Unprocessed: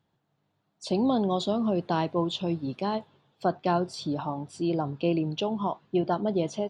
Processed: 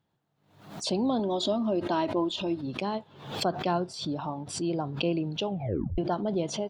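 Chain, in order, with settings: 1.19–2.61 comb 3.2 ms, depth 62%; 5.47 tape stop 0.51 s; backwards sustainer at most 89 dB/s; gain -2.5 dB

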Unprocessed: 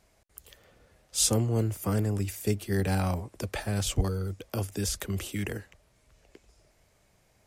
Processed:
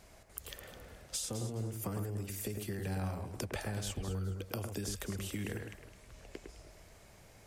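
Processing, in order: limiter -21.5 dBFS, peak gain reduction 9.5 dB; compressor 10:1, threshold -43 dBFS, peak gain reduction 17.5 dB; on a send: echo with dull and thin repeats by turns 0.105 s, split 2300 Hz, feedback 51%, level -4.5 dB; on the sum: gain +6.5 dB

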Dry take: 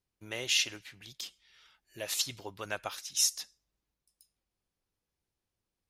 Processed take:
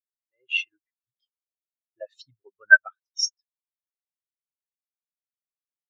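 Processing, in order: high shelf 6000 Hz -6 dB; AGC gain up to 14 dB; bell 1500 Hz +6.5 dB 0.77 oct; notches 50/100 Hz; spectral expander 4:1

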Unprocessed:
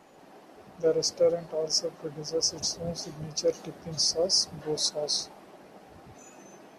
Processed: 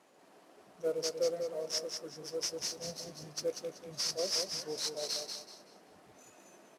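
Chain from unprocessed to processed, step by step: CVSD 64 kbps; HPF 280 Hz 6 dB/oct; notch 810 Hz, Q 12; on a send: feedback echo 0.19 s, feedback 28%, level -6 dB; on the sum: gain -7.5 dB

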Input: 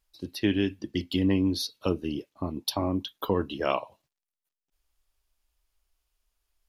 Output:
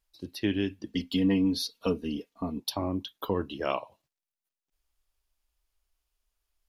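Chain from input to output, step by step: 0.86–2.6 comb 4.3 ms, depth 84%; gain -3 dB

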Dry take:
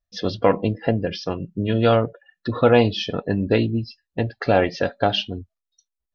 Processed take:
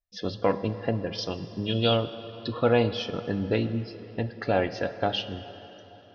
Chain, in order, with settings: 1.18–2.53 resonant high shelf 2500 Hz +7 dB, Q 3; plate-style reverb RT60 4.1 s, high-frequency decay 0.75×, DRR 11.5 dB; gain -7 dB

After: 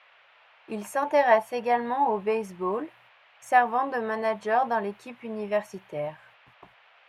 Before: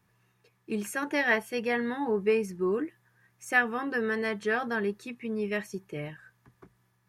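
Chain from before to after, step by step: gate -58 dBFS, range -19 dB; band shelf 770 Hz +15.5 dB 1.2 oct; band noise 560–2900 Hz -55 dBFS; gain -3 dB

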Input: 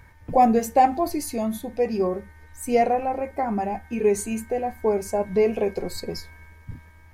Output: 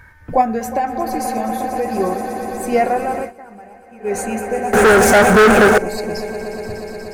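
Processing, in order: swelling echo 0.12 s, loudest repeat 5, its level -14 dB; 0.41–1.97 compressor 6:1, threshold -20 dBFS, peak gain reduction 8.5 dB; 4.73–5.78 sample leveller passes 5; bell 1500 Hz +11.5 dB 0.57 oct; 3.19–4.16 dip -18.5 dB, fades 0.14 s; gain +3 dB

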